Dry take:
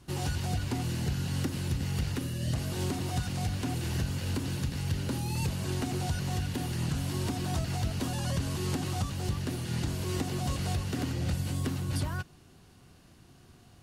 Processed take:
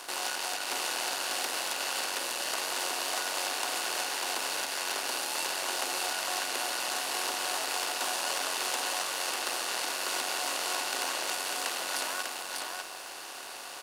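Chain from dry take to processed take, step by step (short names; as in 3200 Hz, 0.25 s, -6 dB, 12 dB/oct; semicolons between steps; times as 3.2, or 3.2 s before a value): per-bin compression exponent 0.4; added harmonics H 3 -18 dB, 6 -23 dB, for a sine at -13.5 dBFS; Bessel high-pass 770 Hz, order 4; crackle 120/s -44 dBFS; on a send: echo 0.596 s -3.5 dB; on the sum: gain +3.5 dB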